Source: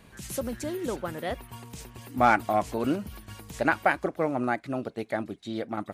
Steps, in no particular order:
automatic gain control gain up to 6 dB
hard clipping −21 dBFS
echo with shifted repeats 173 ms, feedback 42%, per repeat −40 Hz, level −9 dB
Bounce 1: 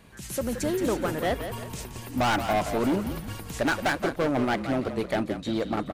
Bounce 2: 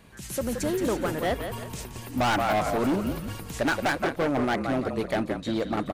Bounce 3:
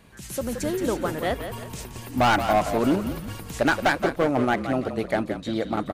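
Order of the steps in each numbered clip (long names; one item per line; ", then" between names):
automatic gain control, then hard clipping, then echo with shifted repeats
echo with shifted repeats, then automatic gain control, then hard clipping
hard clipping, then echo with shifted repeats, then automatic gain control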